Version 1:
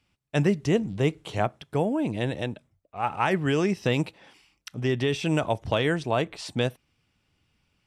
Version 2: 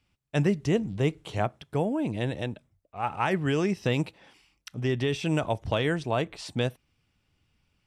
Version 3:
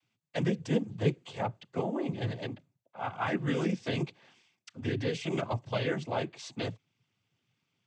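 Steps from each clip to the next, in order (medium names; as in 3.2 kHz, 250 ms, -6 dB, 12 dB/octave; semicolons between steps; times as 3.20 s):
bass shelf 82 Hz +6.5 dB; trim -2.5 dB
noise-vocoded speech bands 16; trim -4.5 dB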